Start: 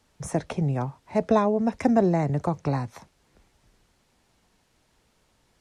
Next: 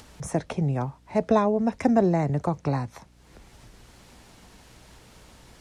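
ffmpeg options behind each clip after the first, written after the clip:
-af "acompressor=mode=upward:threshold=-38dB:ratio=2.5,aeval=exprs='val(0)+0.00158*(sin(2*PI*60*n/s)+sin(2*PI*2*60*n/s)/2+sin(2*PI*3*60*n/s)/3+sin(2*PI*4*60*n/s)/4+sin(2*PI*5*60*n/s)/5)':c=same"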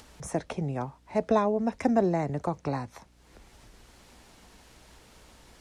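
-af "equalizer=f=130:t=o:w=1.1:g=-5.5,volume=-2.5dB"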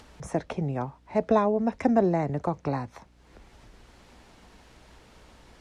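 -af "lowpass=f=3.5k:p=1,volume=2dB"

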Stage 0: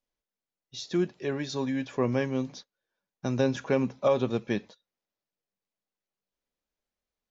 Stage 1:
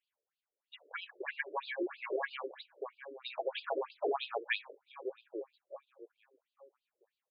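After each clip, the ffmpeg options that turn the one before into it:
-filter_complex "[0:a]asplit=2[a][b];[b]adelay=839,lowpass=f=2k:p=1,volume=-15dB,asplit=2[c][d];[d]adelay=839,lowpass=f=2k:p=1,volume=0.25,asplit=2[e][f];[f]adelay=839,lowpass=f=2k:p=1,volume=0.25[g];[a][c][e][g]amix=inputs=4:normalize=0,afftfilt=real='re*lt(hypot(re,im),0.251)':imag='im*lt(hypot(re,im),0.251)':win_size=1024:overlap=0.75,afftfilt=real='re*between(b*sr/1024,420*pow(3600/420,0.5+0.5*sin(2*PI*3.1*pts/sr))/1.41,420*pow(3600/420,0.5+0.5*sin(2*PI*3.1*pts/sr))*1.41)':imag='im*between(b*sr/1024,420*pow(3600/420,0.5+0.5*sin(2*PI*3.1*pts/sr))/1.41,420*pow(3600/420,0.5+0.5*sin(2*PI*3.1*pts/sr))*1.41)':win_size=1024:overlap=0.75,volume=7dB"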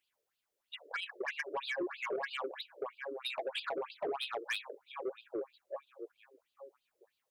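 -filter_complex "[0:a]acrossover=split=220|3000[a][b][c];[b]acompressor=threshold=-40dB:ratio=6[d];[a][d][c]amix=inputs=3:normalize=0,asoftclip=type=tanh:threshold=-36.5dB,volume=7dB"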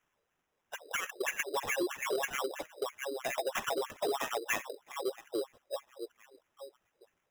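-af "acrusher=samples=10:mix=1:aa=0.000001,volume=4dB"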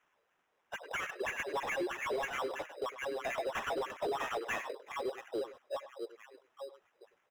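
-filter_complex "[0:a]asplit=2[a][b];[b]adelay=100,highpass=300,lowpass=3.4k,asoftclip=type=hard:threshold=-35dB,volume=-15dB[c];[a][c]amix=inputs=2:normalize=0,asplit=2[d][e];[e]highpass=f=720:p=1,volume=16dB,asoftclip=type=tanh:threshold=-25dB[f];[d][f]amix=inputs=2:normalize=0,lowpass=f=2k:p=1,volume=-6dB,volume=-3dB"

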